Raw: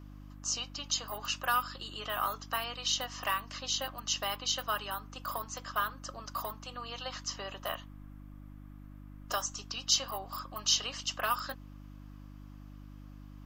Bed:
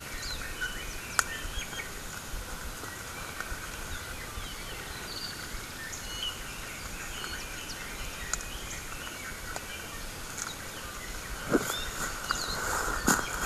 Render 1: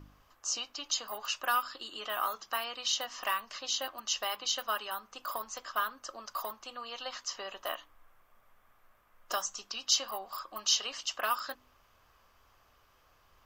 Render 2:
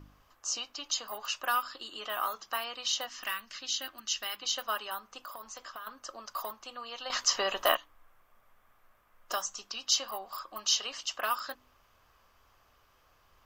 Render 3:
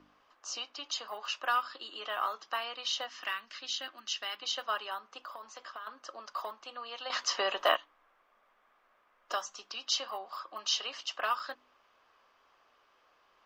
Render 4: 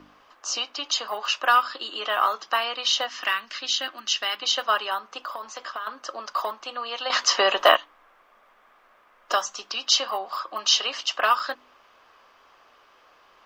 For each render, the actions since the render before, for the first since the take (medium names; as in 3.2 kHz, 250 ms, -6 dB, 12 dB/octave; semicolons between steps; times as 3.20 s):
de-hum 50 Hz, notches 6
3.09–4.43 s: high-order bell 700 Hz -9 dB; 5.23–5.87 s: compression, threshold -40 dBFS; 7.10–7.77 s: gain +11 dB
three-band isolator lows -22 dB, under 240 Hz, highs -18 dB, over 5.3 kHz
trim +11 dB; peak limiter -1 dBFS, peak gain reduction 1.5 dB